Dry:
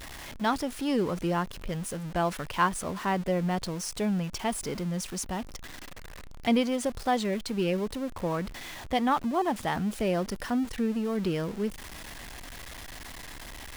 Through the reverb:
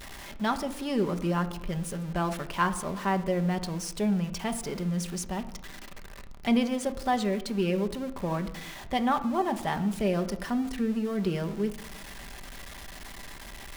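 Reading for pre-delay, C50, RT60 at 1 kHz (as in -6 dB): 5 ms, 14.0 dB, 0.85 s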